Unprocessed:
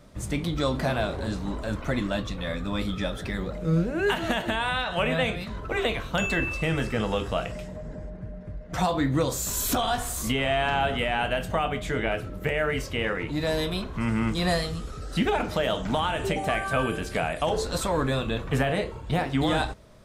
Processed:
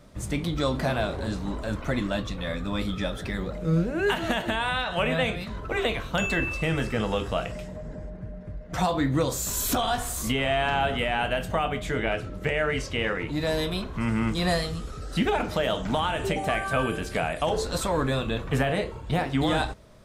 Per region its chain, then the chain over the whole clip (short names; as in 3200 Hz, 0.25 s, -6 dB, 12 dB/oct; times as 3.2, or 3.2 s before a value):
12.07–13.18 LPF 7300 Hz + high shelf 4600 Hz +5.5 dB
whole clip: dry